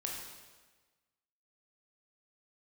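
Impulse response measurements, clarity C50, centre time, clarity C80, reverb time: 1.5 dB, 64 ms, 4.0 dB, 1.3 s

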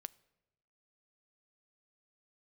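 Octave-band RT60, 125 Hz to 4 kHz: 1.2, 1.1, 1.0, 0.90, 0.85, 0.70 seconds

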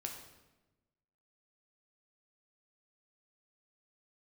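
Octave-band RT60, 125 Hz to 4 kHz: 1.4, 1.4, 1.2, 1.0, 0.90, 0.80 seconds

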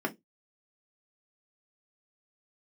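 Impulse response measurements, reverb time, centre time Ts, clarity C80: 0.15 s, 6 ms, 31.5 dB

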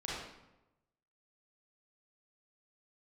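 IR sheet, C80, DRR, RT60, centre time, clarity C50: 2.0 dB, −7.0 dB, 0.95 s, 79 ms, −2.5 dB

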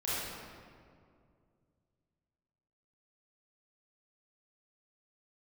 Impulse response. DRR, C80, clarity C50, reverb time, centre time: −10.5 dB, −1.5 dB, −5.5 dB, 2.2 s, 146 ms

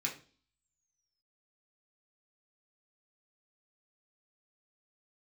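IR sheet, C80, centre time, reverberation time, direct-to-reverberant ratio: 16.0 dB, 17 ms, 0.40 s, −2.5 dB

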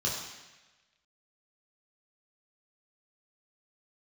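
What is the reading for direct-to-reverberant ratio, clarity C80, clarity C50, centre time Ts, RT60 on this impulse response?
−4.5 dB, 5.0 dB, 3.0 dB, 56 ms, 1.1 s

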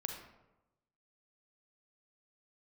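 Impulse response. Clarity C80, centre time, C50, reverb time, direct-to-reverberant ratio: 7.0 dB, 33 ms, 4.5 dB, 1.0 s, 3.0 dB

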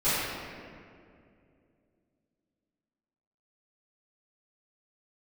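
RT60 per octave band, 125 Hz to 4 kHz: 3.1, 3.2, 2.7, 2.0, 1.9, 1.3 seconds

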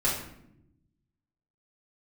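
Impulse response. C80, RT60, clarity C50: 7.5 dB, non-exponential decay, 4.0 dB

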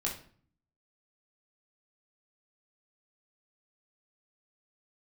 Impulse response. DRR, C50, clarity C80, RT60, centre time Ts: −3.5 dB, 8.0 dB, 13.5 dB, 0.50 s, 24 ms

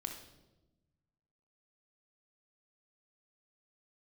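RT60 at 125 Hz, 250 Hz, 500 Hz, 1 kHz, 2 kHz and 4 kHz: 1.9, 1.5, 1.2, 0.90, 0.75, 0.80 seconds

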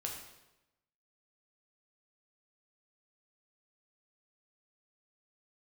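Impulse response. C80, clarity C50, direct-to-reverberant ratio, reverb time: 6.5 dB, 4.5 dB, −0.5 dB, 0.95 s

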